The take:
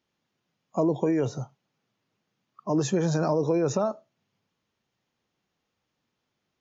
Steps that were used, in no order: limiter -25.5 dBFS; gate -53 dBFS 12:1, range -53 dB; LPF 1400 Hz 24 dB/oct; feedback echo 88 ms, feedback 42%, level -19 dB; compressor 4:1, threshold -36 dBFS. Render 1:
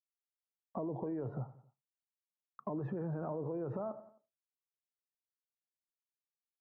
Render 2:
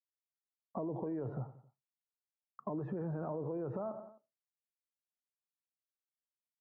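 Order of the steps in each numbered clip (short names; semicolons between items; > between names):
LPF > gate > limiter > feedback echo > compressor; gate > feedback echo > limiter > LPF > compressor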